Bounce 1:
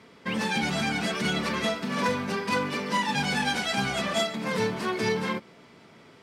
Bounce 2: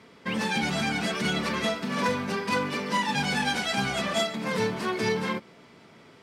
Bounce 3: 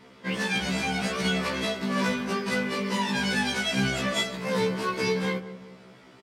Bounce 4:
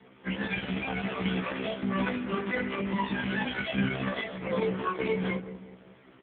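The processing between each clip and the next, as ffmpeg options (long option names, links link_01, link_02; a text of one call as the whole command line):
ffmpeg -i in.wav -af anull out.wav
ffmpeg -i in.wav -filter_complex "[0:a]asplit=2[link_01][link_02];[link_02]adelay=187,lowpass=frequency=930:poles=1,volume=-12dB,asplit=2[link_03][link_04];[link_04]adelay=187,lowpass=frequency=930:poles=1,volume=0.48,asplit=2[link_05][link_06];[link_06]adelay=187,lowpass=frequency=930:poles=1,volume=0.48,asplit=2[link_07][link_08];[link_08]adelay=187,lowpass=frequency=930:poles=1,volume=0.48,asplit=2[link_09][link_10];[link_10]adelay=187,lowpass=frequency=930:poles=1,volume=0.48[link_11];[link_01][link_03][link_05][link_07][link_09][link_11]amix=inputs=6:normalize=0,afftfilt=real='re*1.73*eq(mod(b,3),0)':imag='im*1.73*eq(mod(b,3),0)':win_size=2048:overlap=0.75,volume=3dB" out.wav
ffmpeg -i in.wav -ar 8000 -c:a libopencore_amrnb -b:a 4750 out.amr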